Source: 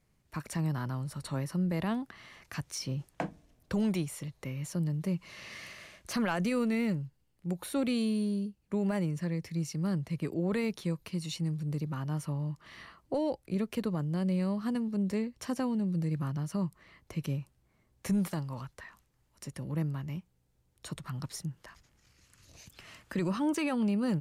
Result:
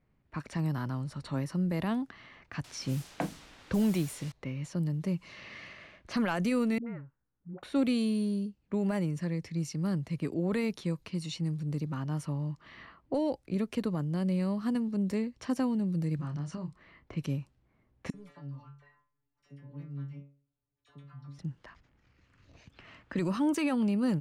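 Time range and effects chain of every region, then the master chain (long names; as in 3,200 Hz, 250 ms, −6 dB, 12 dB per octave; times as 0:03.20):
0:02.64–0:04.32: low-shelf EQ 330 Hz +2.5 dB + bit-depth reduction 8 bits, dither triangular
0:06.78–0:07.63: transistor ladder low-pass 1,700 Hz, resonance 50% + all-pass dispersion highs, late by 86 ms, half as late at 470 Hz
0:16.16–0:17.17: Butterworth low-pass 9,600 Hz 48 dB per octave + downward compressor 5 to 1, threshold −34 dBFS + double-tracking delay 28 ms −7 dB
0:18.10–0:21.39: stiff-string resonator 140 Hz, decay 0.42 s, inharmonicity 0.002 + all-pass dispersion lows, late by 40 ms, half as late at 1,400 Hz
whole clip: low-pass that shuts in the quiet parts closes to 2,300 Hz, open at −28 dBFS; parametric band 270 Hz +4.5 dB 0.28 octaves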